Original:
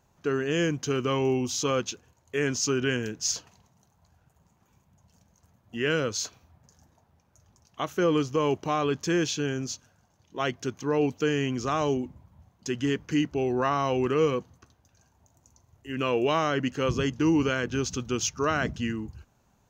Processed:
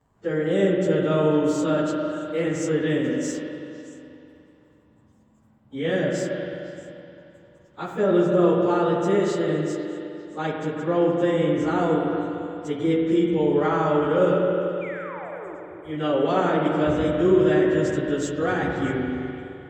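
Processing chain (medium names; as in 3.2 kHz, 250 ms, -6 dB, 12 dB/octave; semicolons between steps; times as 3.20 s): frequency-domain pitch shifter +2.5 st; treble shelf 2 kHz -10.5 dB; painted sound fall, 14.81–15.56 s, 290–2500 Hz -44 dBFS; repeats whose band climbs or falls 125 ms, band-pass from 180 Hz, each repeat 1.4 oct, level -4.5 dB; spring tank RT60 2.9 s, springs 43/51 ms, chirp 55 ms, DRR 0.5 dB; trim +4.5 dB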